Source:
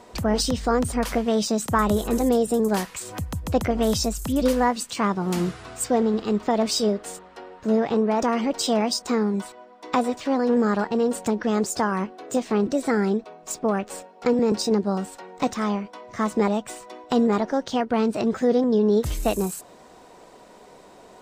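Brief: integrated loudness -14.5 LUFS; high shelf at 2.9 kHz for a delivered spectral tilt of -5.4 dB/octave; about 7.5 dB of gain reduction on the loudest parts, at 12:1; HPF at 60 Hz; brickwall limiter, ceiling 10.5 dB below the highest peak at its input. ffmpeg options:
-af "highpass=60,highshelf=f=2900:g=-7.5,acompressor=threshold=0.0708:ratio=12,volume=6.68,alimiter=limit=0.596:level=0:latency=1"

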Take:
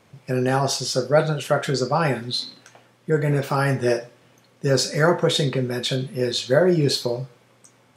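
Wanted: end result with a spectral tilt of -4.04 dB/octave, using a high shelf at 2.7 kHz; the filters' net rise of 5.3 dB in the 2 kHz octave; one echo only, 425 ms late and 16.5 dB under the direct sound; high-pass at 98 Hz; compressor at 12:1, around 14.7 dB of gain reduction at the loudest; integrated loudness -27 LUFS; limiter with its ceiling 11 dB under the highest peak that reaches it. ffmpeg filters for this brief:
-af "highpass=98,equalizer=f=2000:t=o:g=5.5,highshelf=f=2700:g=4,acompressor=threshold=0.0501:ratio=12,alimiter=level_in=1.12:limit=0.0631:level=0:latency=1,volume=0.891,aecho=1:1:425:0.15,volume=2.37"

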